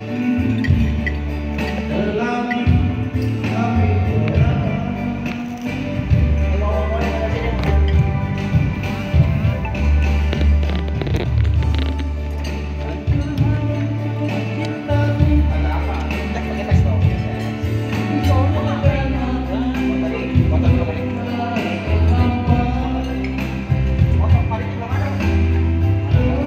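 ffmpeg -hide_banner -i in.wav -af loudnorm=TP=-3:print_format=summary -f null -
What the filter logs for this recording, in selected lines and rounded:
Input Integrated:    -18.9 LUFS
Input True Peak:      -2.0 dBTP
Input LRA:             1.6 LU
Input Threshold:     -28.9 LUFS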